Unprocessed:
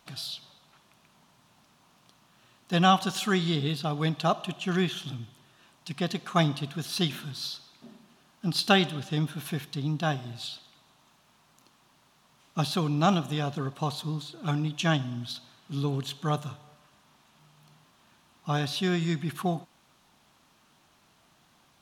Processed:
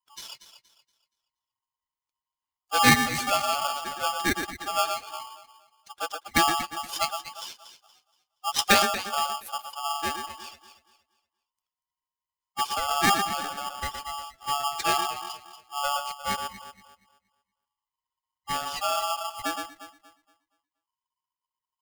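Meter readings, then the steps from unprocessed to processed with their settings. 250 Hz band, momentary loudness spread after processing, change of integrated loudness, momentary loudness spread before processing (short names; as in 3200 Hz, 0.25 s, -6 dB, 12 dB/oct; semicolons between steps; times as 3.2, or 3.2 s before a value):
-6.5 dB, 18 LU, +2.5 dB, 14 LU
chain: per-bin expansion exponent 2; echo with dull and thin repeats by turns 0.118 s, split 850 Hz, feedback 55%, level -5.5 dB; polarity switched at an audio rate 1000 Hz; gain +4 dB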